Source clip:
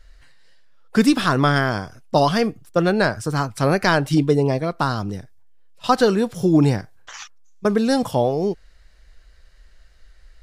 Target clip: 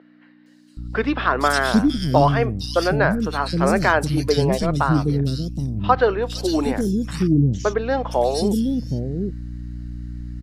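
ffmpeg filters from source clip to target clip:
-filter_complex "[0:a]aeval=exprs='val(0)+0.0282*(sin(2*PI*60*n/s)+sin(2*PI*2*60*n/s)/2+sin(2*PI*3*60*n/s)/3+sin(2*PI*4*60*n/s)/4+sin(2*PI*5*60*n/s)/5)':c=same,acrossover=split=330|3100[s0][s1][s2];[s2]adelay=460[s3];[s0]adelay=770[s4];[s4][s1][s3]amix=inputs=3:normalize=0,volume=1.19"

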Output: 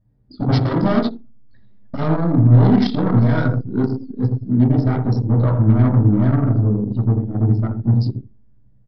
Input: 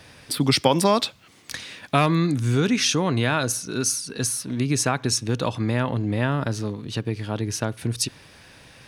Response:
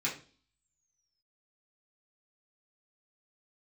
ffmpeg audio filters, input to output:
-filter_complex "[0:a]aresample=11025,aeval=exprs='0.119*(abs(mod(val(0)/0.119+3,4)-2)-1)':c=same,aresample=44100,equalizer=f=2400:w=1.1:g=-14.5,asplit=2[s0][s1];[s1]adelay=83,lowpass=f=2500:p=1,volume=0.596,asplit=2[s2][s3];[s3]adelay=83,lowpass=f=2500:p=1,volume=0.35,asplit=2[s4][s5];[s5]adelay=83,lowpass=f=2500:p=1,volume=0.35,asplit=2[s6][s7];[s7]adelay=83,lowpass=f=2500:p=1,volume=0.35[s8];[s0][s2][s4][s6][s8]amix=inputs=5:normalize=0[s9];[1:a]atrim=start_sample=2205,asetrate=39249,aresample=44100[s10];[s9][s10]afir=irnorm=-1:irlink=0,anlmdn=2510,volume=1.19"

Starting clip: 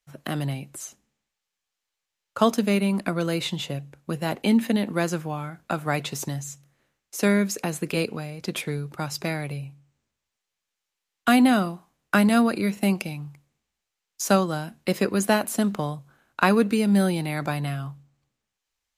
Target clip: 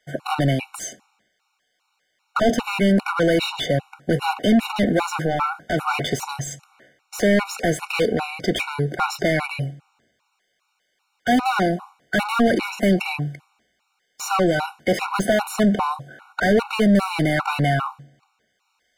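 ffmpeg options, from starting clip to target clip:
-filter_complex "[0:a]asplit=2[s0][s1];[s1]highpass=f=720:p=1,volume=50.1,asoftclip=type=tanh:threshold=0.596[s2];[s0][s2]amix=inputs=2:normalize=0,lowpass=f=1400:p=1,volume=0.501,afftfilt=real='re*gt(sin(2*PI*2.5*pts/sr)*(1-2*mod(floor(b*sr/1024/740),2)),0)':imag='im*gt(sin(2*PI*2.5*pts/sr)*(1-2*mod(floor(b*sr/1024/740),2)),0)':win_size=1024:overlap=0.75,volume=0.75"

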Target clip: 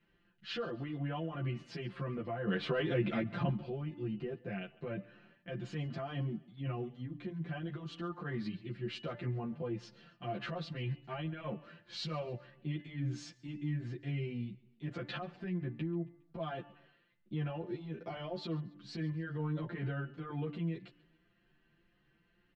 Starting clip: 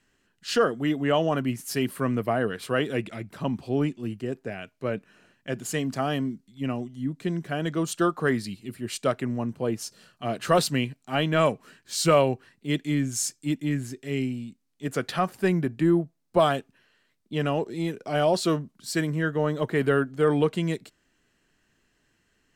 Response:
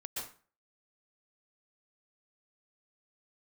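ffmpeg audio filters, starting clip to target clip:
-filter_complex "[0:a]lowpass=f=3700:w=0.5412,lowpass=f=3700:w=1.3066,equalizer=f=110:t=o:w=2.7:g=5.5,aecho=1:1:5.8:0.98,bandreject=f=292.3:t=h:w=4,bandreject=f=584.6:t=h:w=4,bandreject=f=876.9:t=h:w=4,bandreject=f=1169.2:t=h:w=4,bandreject=f=1461.5:t=h:w=4,bandreject=f=1753.8:t=h:w=4,bandreject=f=2046.1:t=h:w=4,bandreject=f=2338.4:t=h:w=4,bandreject=f=2630.7:t=h:w=4,bandreject=f=2923:t=h:w=4,bandreject=f=3215.3:t=h:w=4,acompressor=threshold=0.1:ratio=10,alimiter=limit=0.0631:level=0:latency=1:release=30,asettb=1/sr,asplit=3[s0][s1][s2];[s0]atrim=end=2.474[s3];[s1]atrim=start=2.47:end=3.5,asetpts=PTS-STARTPTS,afade=t=in:d=0.004:c=qsin,afade=t=out:st=1.026:d=0.004:c=qsin,acontrast=89[s4];[s2]atrim=start=3.496[s5];[s3][s4]acrossfade=d=0.004:c1=hsin:c2=qsin[s6];[s6][s5]acrossfade=d=0.004:c1=qsin:c2=hsin,aecho=1:1:137|274|411:0.0708|0.0326|0.015,asplit=2[s7][s8];[s8]adelay=10.6,afreqshift=1.9[s9];[s7][s9]amix=inputs=2:normalize=1,volume=0.596"

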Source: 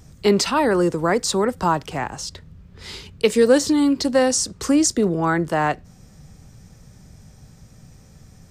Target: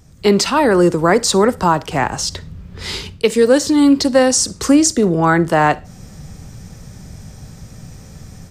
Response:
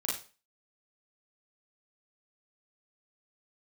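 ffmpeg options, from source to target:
-filter_complex "[0:a]dynaudnorm=f=110:g=3:m=3.76,asplit=2[s0][s1];[1:a]atrim=start_sample=2205,adelay=11[s2];[s1][s2]afir=irnorm=-1:irlink=0,volume=0.0708[s3];[s0][s3]amix=inputs=2:normalize=0,volume=0.891"

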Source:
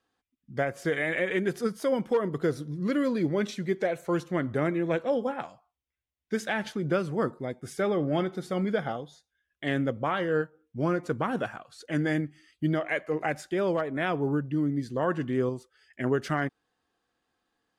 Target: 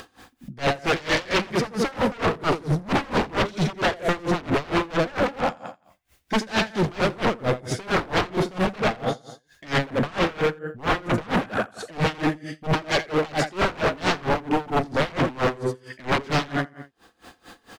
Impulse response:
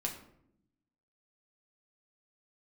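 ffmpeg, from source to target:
-filter_complex "[0:a]aecho=1:1:85|170|255|340|425:0.631|0.265|0.111|0.0467|0.0196,acompressor=mode=upward:threshold=0.00447:ratio=2.5,aeval=exprs='0.251*sin(PI/2*5.62*val(0)/0.251)':c=same,asettb=1/sr,asplit=3[s0][s1][s2];[s0]atrim=end=9.784[s3];[s1]atrim=start=9.78:end=11.93,asetpts=PTS-STARTPTS,afade=t=in:d=0.004:c=qsin,afade=t=out:st=2.146:d=0.004:c=qsin,equalizer=f=4600:w=1.9:g=-11.5[s4];[s2]atrim=start=11.926[s5];[s3][s4]acrossfade=d=0.004:c1=hsin:c2=qsin[s6];[s6][s5]acrossfade=d=0.004:c1=qsin:c2=hsin,volume=6.68,asoftclip=hard,volume=0.15,acrossover=split=6300[s7][s8];[s8]acompressor=threshold=0.00562:ratio=4:attack=1:release=60[s9];[s7][s9]amix=inputs=2:normalize=0,aeval=exprs='val(0)*pow(10,-24*(0.5-0.5*cos(2*PI*4.4*n/s))/20)':c=same"

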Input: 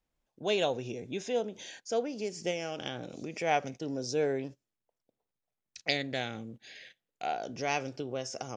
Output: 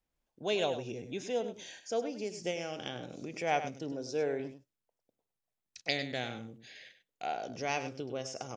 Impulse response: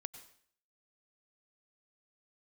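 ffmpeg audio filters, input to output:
-filter_complex "[0:a]asettb=1/sr,asplit=3[s0][s1][s2];[s0]atrim=end=3.924[s3];[s1]atrim=start=3.92:end=4.4,asetpts=PTS-STARTPTS,afade=t=in:d=0.004:c=qsin,afade=t=out:st=0.476:d=0.004:c=qsin,bass=f=250:g=-5,treble=f=4000:g=-6[s4];[s2]atrim=start=4.396[s5];[s3][s4]acrossfade=d=0.004:c1=hsin:c2=qsin[s6];[s6][s5]acrossfade=d=0.004:c1=qsin:c2=hsin,asplit=2[s7][s8];[s8]aecho=0:1:100:0.282[s9];[s7][s9]amix=inputs=2:normalize=0,volume=0.75"

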